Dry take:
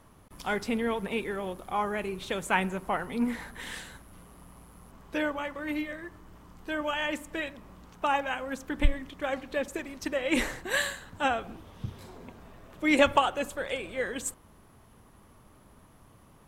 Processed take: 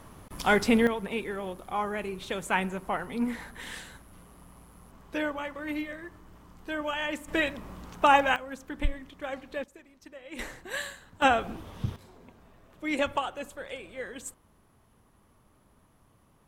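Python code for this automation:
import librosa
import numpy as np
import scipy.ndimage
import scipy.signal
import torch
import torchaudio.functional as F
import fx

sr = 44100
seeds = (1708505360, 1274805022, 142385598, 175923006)

y = fx.gain(x, sr, db=fx.steps((0.0, 7.5), (0.87, -1.0), (7.28, 7.0), (8.36, -4.5), (9.64, -16.5), (10.39, -6.5), (11.22, 5.0), (11.96, -6.5)))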